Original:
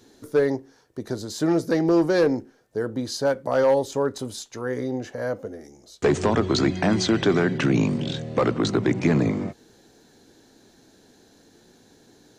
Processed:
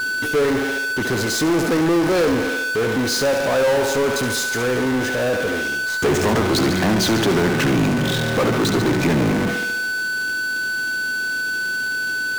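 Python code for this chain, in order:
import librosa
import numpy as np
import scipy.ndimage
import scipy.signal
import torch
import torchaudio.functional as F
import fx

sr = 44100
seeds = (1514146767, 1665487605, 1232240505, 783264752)

y = fx.echo_thinned(x, sr, ms=70, feedback_pct=66, hz=220.0, wet_db=-9.5)
y = y + 10.0 ** (-36.0 / 20.0) * np.sin(2.0 * np.pi * 1500.0 * np.arange(len(y)) / sr)
y = fx.power_curve(y, sr, exponent=0.35)
y = y * librosa.db_to_amplitude(-4.0)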